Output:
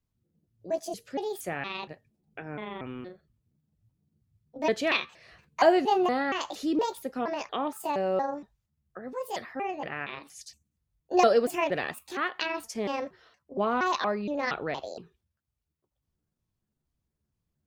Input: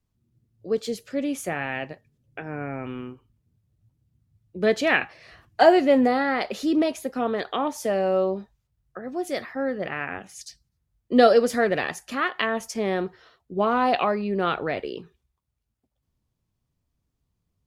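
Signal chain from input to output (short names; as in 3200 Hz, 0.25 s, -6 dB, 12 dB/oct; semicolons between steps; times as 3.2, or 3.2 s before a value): trilling pitch shifter +6.5 st, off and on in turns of 0.234 s; gain -5 dB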